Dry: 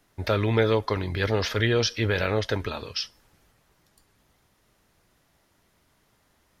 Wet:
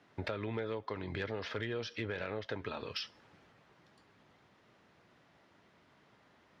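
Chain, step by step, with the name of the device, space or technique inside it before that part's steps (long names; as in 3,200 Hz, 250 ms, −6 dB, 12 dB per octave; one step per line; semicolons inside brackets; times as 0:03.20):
AM radio (band-pass filter 130–3,300 Hz; downward compressor 6 to 1, threshold −38 dBFS, peak gain reduction 19.5 dB; soft clipping −26 dBFS, distortion −25 dB)
level +2.5 dB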